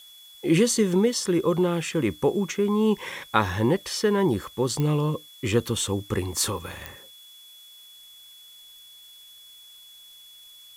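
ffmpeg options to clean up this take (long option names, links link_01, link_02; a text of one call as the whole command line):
ffmpeg -i in.wav -af "adeclick=threshold=4,bandreject=frequency=3400:width=30,agate=range=-21dB:threshold=-41dB" out.wav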